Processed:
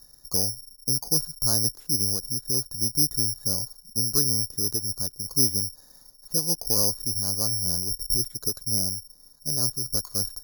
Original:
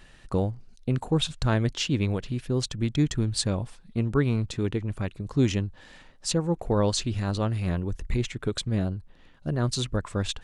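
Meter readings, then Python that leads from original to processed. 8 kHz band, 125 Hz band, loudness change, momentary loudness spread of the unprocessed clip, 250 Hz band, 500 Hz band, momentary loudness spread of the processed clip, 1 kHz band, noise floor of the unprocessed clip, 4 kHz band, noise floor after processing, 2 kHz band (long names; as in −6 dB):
+13.0 dB, −8.5 dB, +4.0 dB, 7 LU, −8.5 dB, −8.5 dB, 7 LU, −9.0 dB, −53 dBFS, +6.0 dB, −55 dBFS, below −15 dB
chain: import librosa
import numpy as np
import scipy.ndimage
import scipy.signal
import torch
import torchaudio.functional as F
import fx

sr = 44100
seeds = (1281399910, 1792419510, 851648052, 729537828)

y = scipy.signal.sosfilt(scipy.signal.butter(4, 1300.0, 'lowpass', fs=sr, output='sos'), x)
y = (np.kron(scipy.signal.resample_poly(y, 1, 8), np.eye(8)[0]) * 8)[:len(y)]
y = F.gain(torch.from_numpy(y), -8.5).numpy()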